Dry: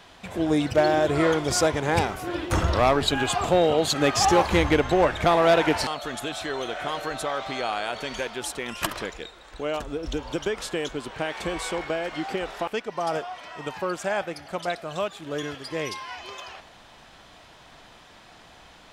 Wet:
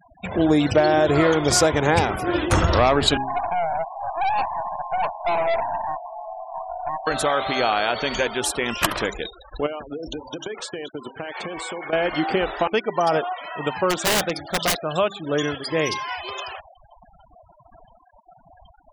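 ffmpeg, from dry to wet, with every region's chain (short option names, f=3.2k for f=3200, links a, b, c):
-filter_complex "[0:a]asettb=1/sr,asplit=3[a][b][c];[a]atrim=end=3.174[d];[b]atrim=start=3.17:end=7.07,asetpts=PTS-STARTPTS,afade=t=in:d=0.004:c=qsin,afade=t=out:st=3.896:d=0.004:c=qsin,asuperpass=centerf=840:order=12:qfactor=1.9,aeval=exprs='(tanh(22.4*val(0)+0.4)-tanh(0.4))/22.4':c=same[e];[c]atrim=start=7.066[f];[d][e]acrossfade=d=0.004:c1=hsin:c2=qsin[g];[g][f]acrossfade=d=0.004:c1=qsin:c2=hsin,asettb=1/sr,asplit=3[h][i][j];[h]atrim=end=9.664[k];[i]atrim=start=9.66:end=11.93,asetpts=PTS-STARTPTS,afade=t=in:d=0.004:c=qsin,afade=t=out:st=2.266:d=0.004:c=qsin,highpass=f=180:p=1,agate=range=-33dB:threshold=-35dB:ratio=3:release=100:detection=peak,acompressor=threshold=-34dB:ratio=12:attack=3.2:release=140:knee=1:detection=peak[l];[j]atrim=start=11.926[m];[k][l]acrossfade=d=0.004:c1=hsin:c2=qsin[n];[n][m]acrossfade=d=0.004:c1=qsin:c2=hsin,asettb=1/sr,asplit=3[o][p][q];[o]atrim=end=13.904[r];[p]atrim=start=13.9:end=14.77,asetpts=PTS-STARTPTS,afade=t=in:d=0.004:c=qsin,afade=t=out:st=0.866:d=0.004:c=qsin,equalizer=f=3.7k:w=4.6:g=9,aeval=exprs='(mod(12.6*val(0)+1,2)-1)/12.6':c=same[s];[q]atrim=start=14.766[t];[r][s]acrossfade=d=0.004:c1=hsin:c2=qsin[u];[u][t]acrossfade=d=0.004:c1=qsin:c2=hsin,bandreject=f=66.44:t=h:w=4,bandreject=f=132.88:t=h:w=4,bandreject=f=199.32:t=h:w=4,bandreject=f=265.76:t=h:w=4,bandreject=f=332.2:t=h:w=4,bandreject=f=398.64:t=h:w=4,afftfilt=real='re*gte(hypot(re,im),0.0112)':imag='im*gte(hypot(re,im),0.0112)':win_size=1024:overlap=0.75,acompressor=threshold=-22dB:ratio=4,volume=8dB"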